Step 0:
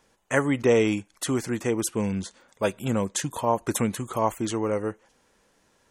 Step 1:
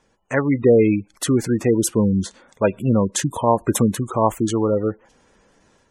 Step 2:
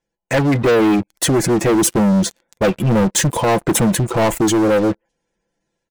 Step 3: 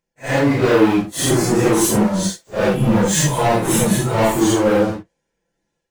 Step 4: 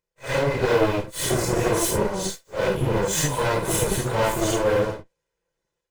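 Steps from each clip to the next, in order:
spectral gate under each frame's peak -20 dB strong; bass shelf 380 Hz +4 dB; level rider gain up to 6.5 dB
peaking EQ 1.2 kHz -14 dB 0.27 oct; comb 5.9 ms, depth 53%; waveshaping leveller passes 5; trim -8 dB
phase randomisation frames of 200 ms
comb filter that takes the minimum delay 2 ms; trim -4.5 dB

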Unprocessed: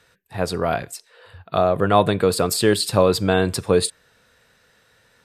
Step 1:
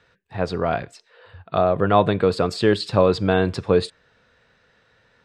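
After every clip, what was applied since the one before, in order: distance through air 150 m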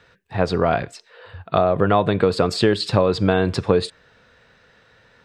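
compression 6:1, threshold -18 dBFS, peak gain reduction 8 dB; trim +5.5 dB

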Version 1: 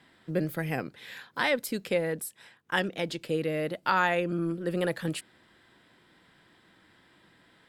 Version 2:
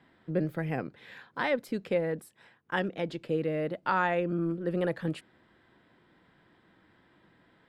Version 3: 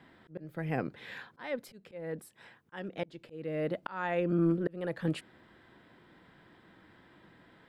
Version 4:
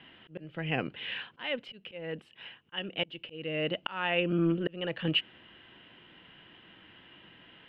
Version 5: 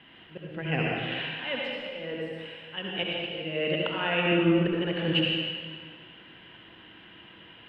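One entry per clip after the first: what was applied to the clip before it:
low-pass 1.4 kHz 6 dB/octave
slow attack 597 ms; trim +4 dB
resonant low-pass 2.9 kHz, resonance Q 13
reverberation RT60 1.9 s, pre-delay 62 ms, DRR -3.5 dB

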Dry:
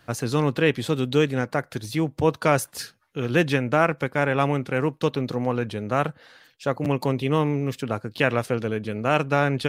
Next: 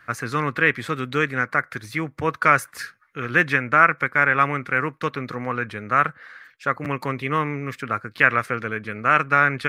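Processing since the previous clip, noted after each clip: high-order bell 1.6 kHz +14.5 dB 1.3 oct; trim -4.5 dB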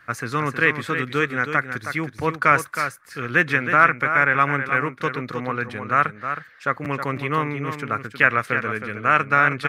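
delay 317 ms -8.5 dB

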